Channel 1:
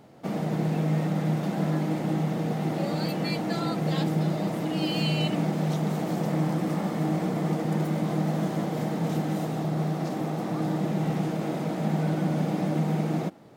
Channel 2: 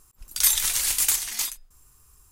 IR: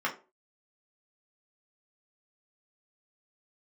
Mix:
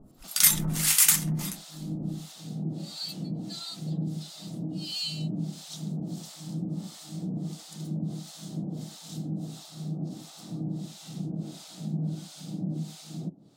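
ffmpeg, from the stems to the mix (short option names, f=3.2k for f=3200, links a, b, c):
-filter_complex "[0:a]equalizer=f=125:t=o:w=1:g=3,equalizer=f=250:t=o:w=1:g=5,equalizer=f=500:t=o:w=1:g=-5,equalizer=f=1k:t=o:w=1:g=-5,equalizer=f=2k:t=o:w=1:g=-11,equalizer=f=4k:t=o:w=1:g=10,equalizer=f=8k:t=o:w=1:g=8,acrossover=split=160|3000[a][b][c];[b]acompressor=threshold=-35dB:ratio=3[d];[a][d][c]amix=inputs=3:normalize=0,volume=-3dB,asplit=2[e][f];[f]volume=-18.5dB[g];[1:a]volume=2.5dB,asplit=2[h][i];[i]volume=-11.5dB[j];[2:a]atrim=start_sample=2205[k];[g][j]amix=inputs=2:normalize=0[l];[l][k]afir=irnorm=-1:irlink=0[m];[e][h][m]amix=inputs=3:normalize=0,acrossover=split=790[n][o];[n]aeval=exprs='val(0)*(1-1/2+1/2*cos(2*PI*1.5*n/s))':c=same[p];[o]aeval=exprs='val(0)*(1-1/2-1/2*cos(2*PI*1.5*n/s))':c=same[q];[p][q]amix=inputs=2:normalize=0"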